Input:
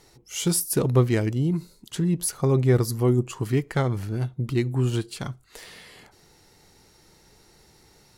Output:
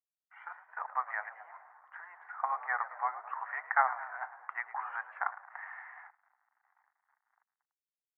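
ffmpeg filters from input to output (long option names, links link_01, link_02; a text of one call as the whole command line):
ffmpeg -i in.wav -filter_complex "[0:a]asplit=6[link_01][link_02][link_03][link_04][link_05][link_06];[link_02]adelay=109,afreqshift=57,volume=-15dB[link_07];[link_03]adelay=218,afreqshift=114,volume=-20.4dB[link_08];[link_04]adelay=327,afreqshift=171,volume=-25.7dB[link_09];[link_05]adelay=436,afreqshift=228,volume=-31.1dB[link_10];[link_06]adelay=545,afreqshift=285,volume=-36.4dB[link_11];[link_01][link_07][link_08][link_09][link_10][link_11]amix=inputs=6:normalize=0,dynaudnorm=framelen=570:gausssize=7:maxgain=10dB,agate=range=-33dB:threshold=-43dB:ratio=3:detection=peak,aeval=exprs='sgn(val(0))*max(abs(val(0))-0.00473,0)':channel_layout=same,asuperpass=centerf=1200:order=12:qfactor=1" out.wav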